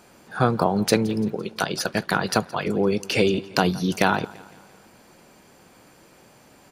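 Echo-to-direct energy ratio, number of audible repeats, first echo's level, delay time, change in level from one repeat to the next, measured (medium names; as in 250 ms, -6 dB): -19.5 dB, 3, -21.0 dB, 170 ms, -6.0 dB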